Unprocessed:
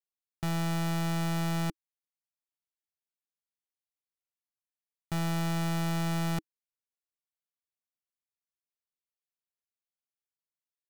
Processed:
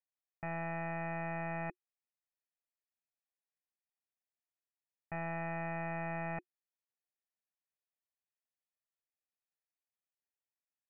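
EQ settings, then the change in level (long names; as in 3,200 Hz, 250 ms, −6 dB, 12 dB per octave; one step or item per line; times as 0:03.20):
Chebyshev low-pass with heavy ripple 2,600 Hz, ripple 9 dB
low-shelf EQ 480 Hz −6.5 dB
notch filter 360 Hz, Q 12
+2.0 dB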